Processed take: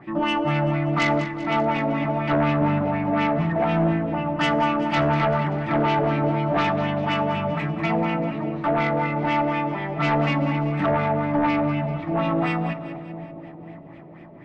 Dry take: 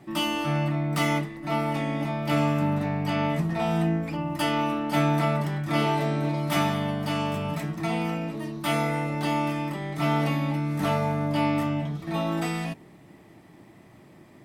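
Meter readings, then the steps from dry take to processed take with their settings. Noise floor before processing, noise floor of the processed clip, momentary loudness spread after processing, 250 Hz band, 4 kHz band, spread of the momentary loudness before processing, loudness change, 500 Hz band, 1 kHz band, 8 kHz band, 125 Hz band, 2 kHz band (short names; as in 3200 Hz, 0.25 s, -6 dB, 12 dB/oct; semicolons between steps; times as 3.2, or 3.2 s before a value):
-52 dBFS, -42 dBFS, 6 LU, +3.5 dB, 0.0 dB, 6 LU, +4.0 dB, +5.5 dB, +5.5 dB, n/a, +2.0 dB, +5.0 dB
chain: LFO low-pass sine 4.1 Hz 540–2700 Hz; sine folder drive 6 dB, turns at -10 dBFS; on a send: split-band echo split 800 Hz, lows 0.525 s, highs 0.193 s, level -12 dB; on the sum: FDN reverb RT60 0.79 s, high-frequency decay 0.85×, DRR 18 dB; gain -6.5 dB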